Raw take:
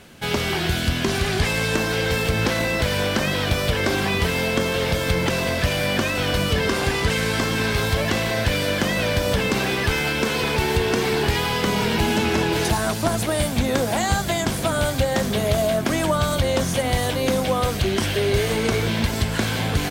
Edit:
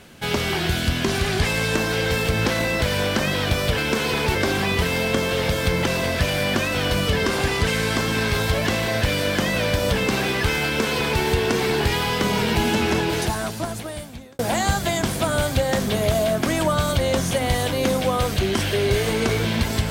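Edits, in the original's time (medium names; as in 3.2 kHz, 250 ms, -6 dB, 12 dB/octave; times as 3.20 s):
10.08–10.65 s: copy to 3.78 s
12.33–13.82 s: fade out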